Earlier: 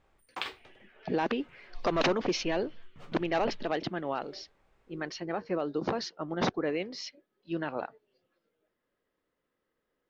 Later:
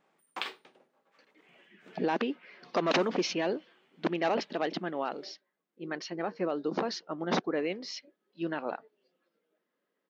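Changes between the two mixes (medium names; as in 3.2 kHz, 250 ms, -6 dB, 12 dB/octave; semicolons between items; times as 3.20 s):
speech: entry +0.90 s; master: add brick-wall FIR high-pass 150 Hz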